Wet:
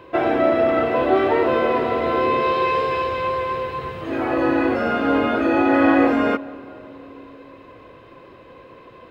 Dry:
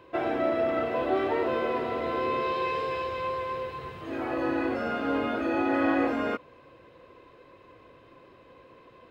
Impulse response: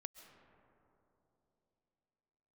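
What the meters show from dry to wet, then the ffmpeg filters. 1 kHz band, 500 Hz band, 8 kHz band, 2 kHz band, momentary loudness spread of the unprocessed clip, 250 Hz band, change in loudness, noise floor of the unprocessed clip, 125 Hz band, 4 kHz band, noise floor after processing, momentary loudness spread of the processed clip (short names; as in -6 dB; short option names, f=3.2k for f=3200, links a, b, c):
+9.0 dB, +9.0 dB, n/a, +9.0 dB, 8 LU, +9.5 dB, +9.0 dB, -55 dBFS, +9.5 dB, +8.0 dB, -45 dBFS, 10 LU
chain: -filter_complex "[0:a]asplit=2[a][b];[1:a]atrim=start_sample=2205,lowpass=4.6k[c];[b][c]afir=irnorm=-1:irlink=0,volume=-3dB[d];[a][d]amix=inputs=2:normalize=0,volume=6.5dB"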